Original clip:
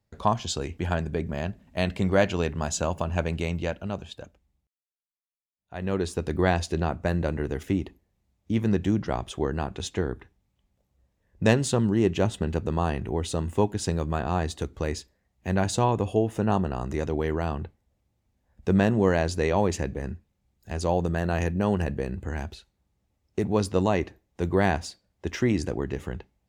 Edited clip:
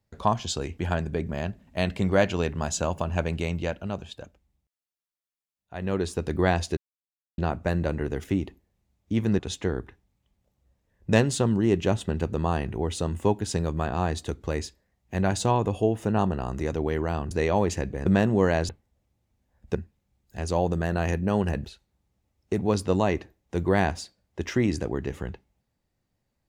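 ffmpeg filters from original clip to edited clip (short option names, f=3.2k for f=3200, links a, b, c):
-filter_complex "[0:a]asplit=8[a][b][c][d][e][f][g][h];[a]atrim=end=6.77,asetpts=PTS-STARTPTS,afade=t=out:st=6.766:d=0.004:c=hsin,apad=pad_dur=0.61[i];[b]atrim=start=6.77:end=8.782,asetpts=PTS-STARTPTS,afade=t=in:d=0.004:c=hsin[j];[c]atrim=start=9.718:end=17.642[k];[d]atrim=start=19.328:end=20.082[l];[e]atrim=start=18.698:end=19.332[m];[f]atrim=start=17.638:end=18.702[n];[g]atrim=start=20.078:end=21.982[o];[h]atrim=start=22.508[p];[i][j]concat=n=2:v=0:a=1[q];[q][k]acrossfade=d=0.004:c1=hsin:c2=hsin[r];[r][l]acrossfade=d=0.004:c1=hsin:c2=hsin[s];[s][m]acrossfade=d=0.004:c1=hsin:c2=hsin[t];[t][n]acrossfade=d=0.004:c1=hsin:c2=hsin[u];[u][o]acrossfade=d=0.004:c1=hsin:c2=hsin[v];[v][p]acrossfade=d=0.004:c1=hsin:c2=hsin"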